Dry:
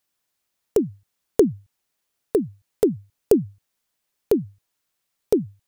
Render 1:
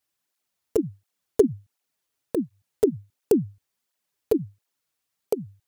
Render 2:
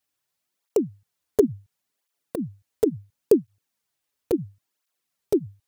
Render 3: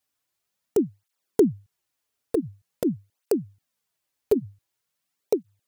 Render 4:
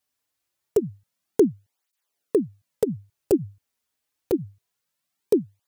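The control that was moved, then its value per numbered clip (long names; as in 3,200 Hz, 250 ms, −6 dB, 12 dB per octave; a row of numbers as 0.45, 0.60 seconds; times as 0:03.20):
through-zero flanger with one copy inverted, nulls at: 1.4, 0.72, 0.46, 0.26 Hertz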